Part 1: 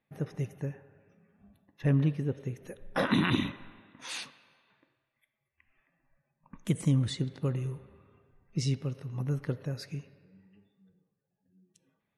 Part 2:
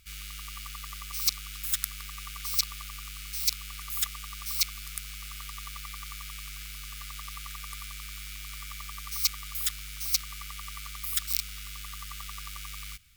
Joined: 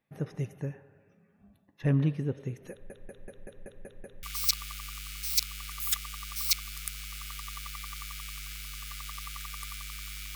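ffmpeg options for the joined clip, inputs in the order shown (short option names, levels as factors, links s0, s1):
-filter_complex "[0:a]apad=whole_dur=10.35,atrim=end=10.35,asplit=8[s0][s1][s2][s3][s4][s5][s6][s7];[s0]atrim=end=2.902[s8];[s1]atrim=start=2.708:end=2.902[s9];[s2]atrim=start=2.708:end=2.902[s10];[s3]atrim=start=2.708:end=2.902[s11];[s4]atrim=start=2.708:end=2.902[s12];[s5]atrim=start=2.708:end=2.902[s13];[s6]atrim=start=2.708:end=2.902[s14];[s7]atrim=start=2.708:end=2.902[s15];[1:a]atrim=start=2.328:end=8.45[s16];[s8][s9]acrossfade=d=0.004:c1=hsin:c2=hsin[s17];[s17][s10]acrossfade=d=0.004:c1=hsin:c2=hsin[s18];[s18][s11]acrossfade=d=0.004:c1=hsin:c2=hsin[s19];[s19][s12]acrossfade=d=0.004:c1=hsin:c2=hsin[s20];[s20][s13]acrossfade=d=0.004:c1=hsin:c2=hsin[s21];[s21][s14]acrossfade=d=0.004:c1=hsin:c2=hsin[s22];[s22][s15]acrossfade=d=0.004:c1=hsin:c2=hsin[s23];[s23][s16]acrossfade=d=0.004:c1=hsin:c2=hsin"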